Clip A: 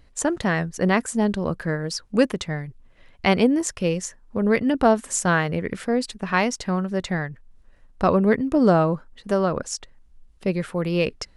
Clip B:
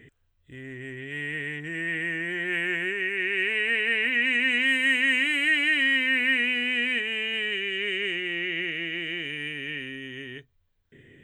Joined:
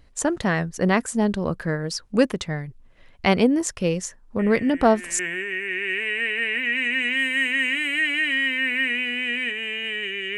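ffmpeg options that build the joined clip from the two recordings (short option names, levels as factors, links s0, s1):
-filter_complex "[1:a]asplit=2[s0][s1];[0:a]apad=whole_dur=10.37,atrim=end=10.37,atrim=end=5.192[s2];[s1]atrim=start=2.678:end=7.86[s3];[s0]atrim=start=1.88:end=2.68,asetpts=PTS-STARTPTS,volume=0.316,afade=t=in:d=0.004:c=hsin,afade=t=out:st=0.796:d=0.004:c=hsin,adelay=4390[s4];[s2][s3]acrossfade=d=0.004:c1=hsin:c2=hsin[s5];[s5][s4]amix=inputs=2:normalize=0"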